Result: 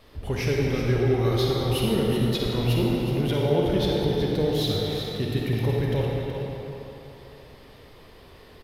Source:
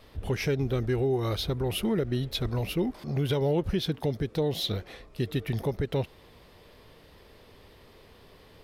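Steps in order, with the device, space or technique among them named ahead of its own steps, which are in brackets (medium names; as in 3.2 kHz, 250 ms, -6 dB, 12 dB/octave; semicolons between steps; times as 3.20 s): cave (delay 371 ms -8.5 dB; reverberation RT60 3.2 s, pre-delay 41 ms, DRR -2.5 dB)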